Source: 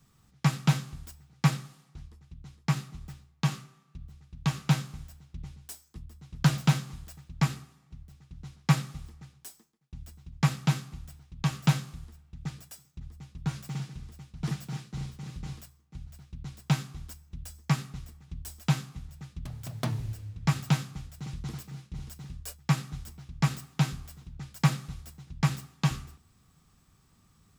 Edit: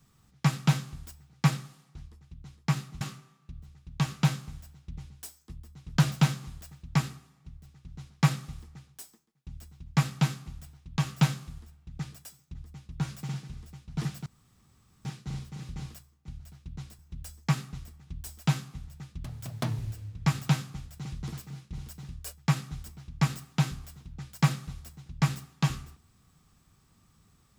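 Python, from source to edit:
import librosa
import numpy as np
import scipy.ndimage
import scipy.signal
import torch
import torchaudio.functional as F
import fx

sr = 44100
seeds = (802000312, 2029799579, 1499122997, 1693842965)

y = fx.edit(x, sr, fx.cut(start_s=3.01, length_s=0.46),
    fx.insert_room_tone(at_s=14.72, length_s=0.79),
    fx.cut(start_s=16.66, length_s=0.54), tone=tone)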